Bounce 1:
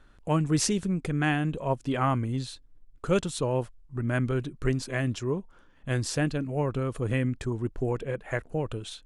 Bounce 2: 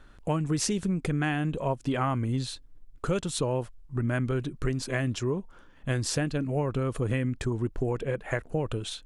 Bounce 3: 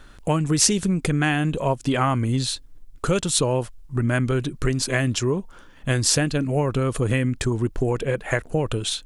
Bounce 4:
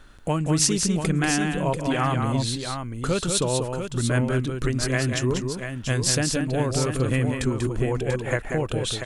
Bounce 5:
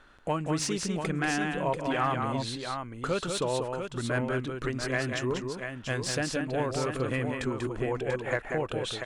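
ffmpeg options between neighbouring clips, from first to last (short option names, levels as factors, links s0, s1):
-af "acompressor=threshold=0.0398:ratio=6,volume=1.58"
-af "highshelf=f=3100:g=7.5,volume=2"
-af "aecho=1:1:191|689:0.531|0.422,volume=0.708"
-filter_complex "[0:a]asplit=2[s0][s1];[s1]highpass=f=720:p=1,volume=4.47,asoftclip=type=tanh:threshold=0.668[s2];[s0][s2]amix=inputs=2:normalize=0,lowpass=f=1700:p=1,volume=0.501,volume=0.447"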